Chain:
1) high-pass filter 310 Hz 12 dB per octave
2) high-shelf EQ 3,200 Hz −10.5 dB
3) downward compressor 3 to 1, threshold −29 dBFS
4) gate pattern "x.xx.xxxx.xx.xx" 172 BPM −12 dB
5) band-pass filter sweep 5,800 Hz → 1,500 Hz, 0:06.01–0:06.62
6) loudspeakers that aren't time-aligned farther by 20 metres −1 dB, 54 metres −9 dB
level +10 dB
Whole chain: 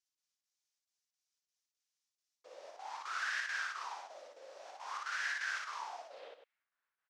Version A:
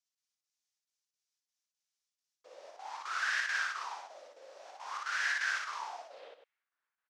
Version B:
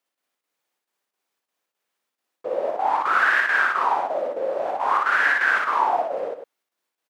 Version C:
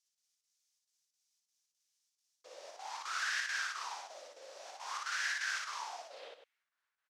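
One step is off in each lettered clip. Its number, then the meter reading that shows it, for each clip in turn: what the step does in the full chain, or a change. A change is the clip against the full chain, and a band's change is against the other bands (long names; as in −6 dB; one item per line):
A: 3, average gain reduction 2.0 dB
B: 5, 4 kHz band −14.0 dB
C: 2, 8 kHz band +6.5 dB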